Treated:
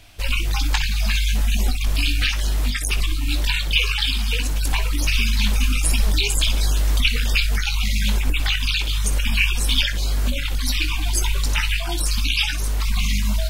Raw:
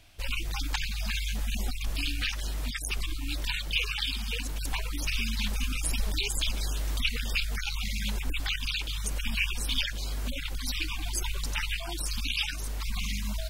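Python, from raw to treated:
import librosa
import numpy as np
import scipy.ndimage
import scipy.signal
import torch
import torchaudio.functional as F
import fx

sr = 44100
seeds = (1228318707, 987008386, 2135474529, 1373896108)

y = fx.room_early_taps(x, sr, ms=(20, 61), db=(-9.0, -13.0))
y = y * librosa.db_to_amplitude(8.5)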